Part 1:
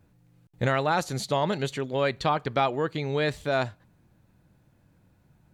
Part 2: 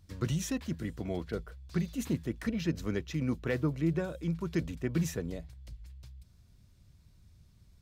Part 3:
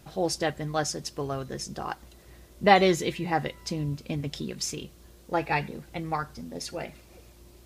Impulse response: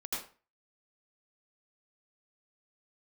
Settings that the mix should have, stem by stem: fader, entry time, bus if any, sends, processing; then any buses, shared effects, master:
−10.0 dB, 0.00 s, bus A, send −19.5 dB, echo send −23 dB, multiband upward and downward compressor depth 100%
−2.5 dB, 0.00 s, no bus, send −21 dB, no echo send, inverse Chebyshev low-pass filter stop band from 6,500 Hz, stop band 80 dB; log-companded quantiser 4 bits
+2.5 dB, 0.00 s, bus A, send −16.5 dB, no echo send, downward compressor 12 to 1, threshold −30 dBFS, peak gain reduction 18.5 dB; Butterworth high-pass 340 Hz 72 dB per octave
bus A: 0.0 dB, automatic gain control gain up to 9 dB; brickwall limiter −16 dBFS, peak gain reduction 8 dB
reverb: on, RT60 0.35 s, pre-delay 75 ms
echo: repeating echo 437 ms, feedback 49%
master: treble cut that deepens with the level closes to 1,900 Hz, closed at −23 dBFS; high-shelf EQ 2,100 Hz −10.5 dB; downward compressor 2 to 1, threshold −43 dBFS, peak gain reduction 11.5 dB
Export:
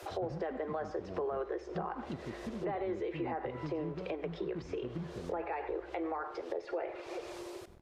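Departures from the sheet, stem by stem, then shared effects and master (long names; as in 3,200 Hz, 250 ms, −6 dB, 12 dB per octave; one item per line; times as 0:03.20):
stem 1: muted
stem 3 +2.5 dB → +13.5 dB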